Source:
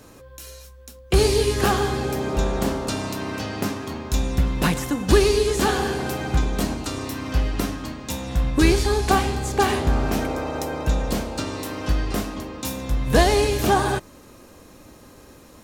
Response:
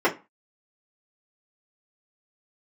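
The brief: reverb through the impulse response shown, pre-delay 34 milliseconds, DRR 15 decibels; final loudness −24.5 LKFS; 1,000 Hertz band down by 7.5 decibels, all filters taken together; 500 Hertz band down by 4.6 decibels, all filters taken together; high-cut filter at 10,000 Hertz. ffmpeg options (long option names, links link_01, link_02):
-filter_complex "[0:a]lowpass=10000,equalizer=frequency=500:width_type=o:gain=-4.5,equalizer=frequency=1000:width_type=o:gain=-8.5,asplit=2[link_01][link_02];[1:a]atrim=start_sample=2205,adelay=34[link_03];[link_02][link_03]afir=irnorm=-1:irlink=0,volume=-32.5dB[link_04];[link_01][link_04]amix=inputs=2:normalize=0,volume=0.5dB"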